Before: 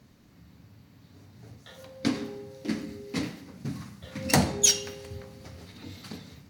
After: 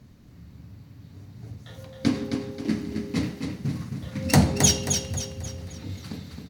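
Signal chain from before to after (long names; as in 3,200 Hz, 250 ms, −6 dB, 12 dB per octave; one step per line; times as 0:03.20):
low-shelf EQ 200 Hz +11 dB
repeating echo 267 ms, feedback 41%, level −6 dB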